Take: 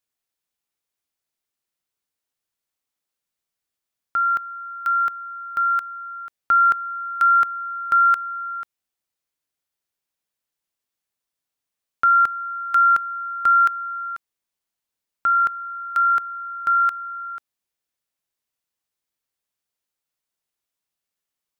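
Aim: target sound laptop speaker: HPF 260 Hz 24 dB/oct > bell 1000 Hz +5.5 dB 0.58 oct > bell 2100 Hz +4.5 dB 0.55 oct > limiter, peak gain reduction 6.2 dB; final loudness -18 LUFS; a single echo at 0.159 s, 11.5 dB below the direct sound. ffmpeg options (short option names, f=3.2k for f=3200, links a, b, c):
-af "highpass=f=260:w=0.5412,highpass=f=260:w=1.3066,equalizer=f=1k:t=o:w=0.58:g=5.5,equalizer=f=2.1k:t=o:w=0.55:g=4.5,aecho=1:1:159:0.266,volume=3dB,alimiter=limit=-11dB:level=0:latency=1"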